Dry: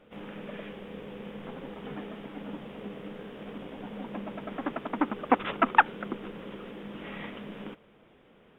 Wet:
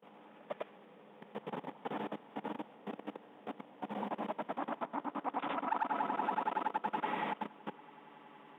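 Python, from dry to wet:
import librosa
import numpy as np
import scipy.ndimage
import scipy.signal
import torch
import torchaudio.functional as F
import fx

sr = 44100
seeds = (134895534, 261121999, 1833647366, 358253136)

p1 = fx.frame_reverse(x, sr, frame_ms=202.0)
p2 = np.clip(10.0 ** (19.5 / 20.0) * p1, -1.0, 1.0) / 10.0 ** (19.5 / 20.0)
p3 = p1 + F.gain(torch.from_numpy(p2), -11.0).numpy()
p4 = fx.rider(p3, sr, range_db=3, speed_s=0.5)
p5 = fx.echo_swell(p4, sr, ms=94, loudest=5, wet_db=-16.0)
p6 = fx.level_steps(p5, sr, step_db=19)
p7 = scipy.signal.sosfilt(scipy.signal.butter(4, 170.0, 'highpass', fs=sr, output='sos'), p6)
p8 = fx.peak_eq(p7, sr, hz=880.0, db=11.0, octaves=0.81)
y = F.gain(torch.from_numpy(p8), -2.5).numpy()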